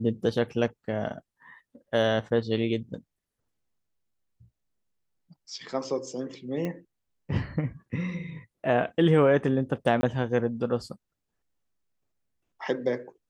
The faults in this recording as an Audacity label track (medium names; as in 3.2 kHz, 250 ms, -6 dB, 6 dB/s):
6.650000	6.650000	pop -20 dBFS
10.010000	10.030000	dropout 20 ms